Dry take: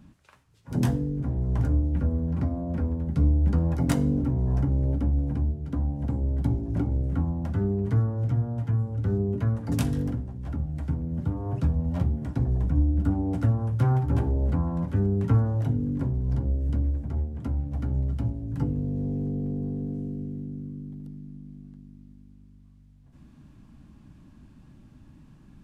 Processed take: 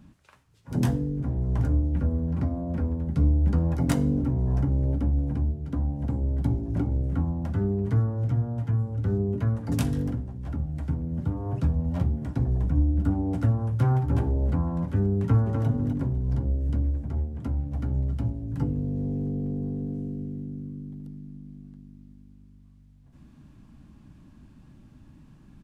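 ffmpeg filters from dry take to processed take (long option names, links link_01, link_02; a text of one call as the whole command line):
ffmpeg -i in.wav -filter_complex "[0:a]asplit=2[link_01][link_02];[link_02]afade=type=in:start_time=15.21:duration=0.01,afade=type=out:start_time=15.68:duration=0.01,aecho=0:1:250|500|750:0.530884|0.0796327|0.0119449[link_03];[link_01][link_03]amix=inputs=2:normalize=0" out.wav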